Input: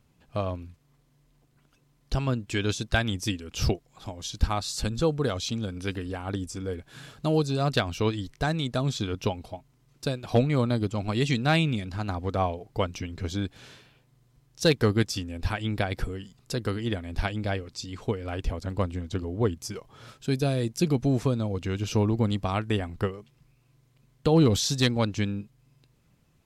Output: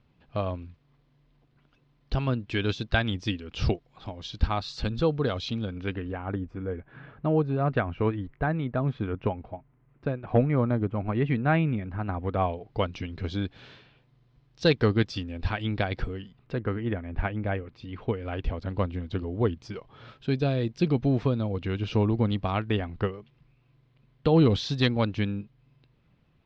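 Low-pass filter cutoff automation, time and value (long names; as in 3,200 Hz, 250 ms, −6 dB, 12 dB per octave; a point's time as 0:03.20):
low-pass filter 24 dB per octave
0:05.47 4,200 Hz
0:06.37 2,100 Hz
0:11.96 2,100 Hz
0:12.77 4,300 Hz
0:16.07 4,300 Hz
0:16.67 2,300 Hz
0:17.41 2,300 Hz
0:18.59 3,900 Hz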